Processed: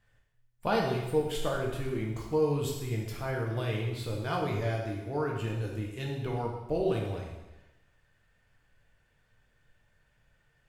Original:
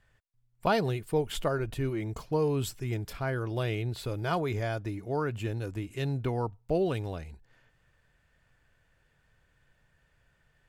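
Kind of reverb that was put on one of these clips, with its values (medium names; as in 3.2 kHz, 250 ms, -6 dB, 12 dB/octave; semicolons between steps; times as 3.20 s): plate-style reverb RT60 1 s, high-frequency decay 1×, DRR -1.5 dB; trim -4.5 dB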